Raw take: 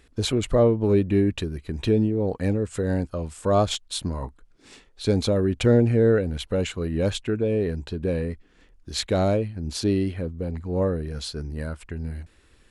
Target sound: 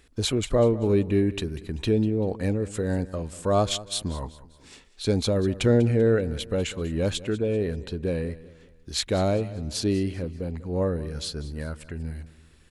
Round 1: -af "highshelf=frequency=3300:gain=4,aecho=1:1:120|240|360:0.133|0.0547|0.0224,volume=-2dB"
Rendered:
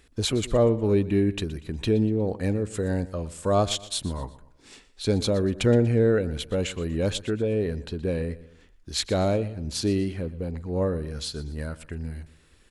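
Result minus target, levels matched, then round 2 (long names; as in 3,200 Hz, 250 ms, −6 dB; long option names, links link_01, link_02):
echo 74 ms early
-af "highshelf=frequency=3300:gain=4,aecho=1:1:194|388|582:0.133|0.0547|0.0224,volume=-2dB"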